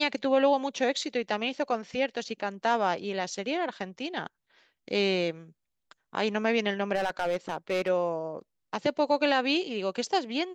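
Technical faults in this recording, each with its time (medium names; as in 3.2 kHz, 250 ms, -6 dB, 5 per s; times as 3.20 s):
6.94–7.90 s: clipped -23 dBFS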